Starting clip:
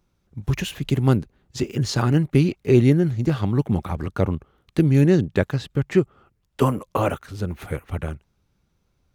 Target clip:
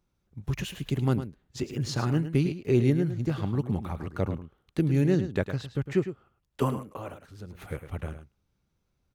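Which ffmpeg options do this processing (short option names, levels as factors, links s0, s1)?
-filter_complex "[0:a]asettb=1/sr,asplit=3[s0][s1][s2];[s0]atrim=end=6.864[s3];[s1]atrim=start=6.86:end=7.55,asetpts=PTS-STARTPTS,afade=t=in:d=0.004:c=qsin,afade=t=out:st=0.686:d=0.004:c=qsin,acompressor=threshold=0.00501:ratio=1.5[s4];[s2]atrim=start=7.546[s5];[s3][s4]acrossfade=d=0.004:c1=hsin:c2=qsin[s6];[s6][s5]acrossfade=d=0.004:c1=qsin:c2=hsin,asplit=2[s7][s8];[s8]aecho=0:1:106:0.282[s9];[s7][s9]amix=inputs=2:normalize=0,volume=0.422"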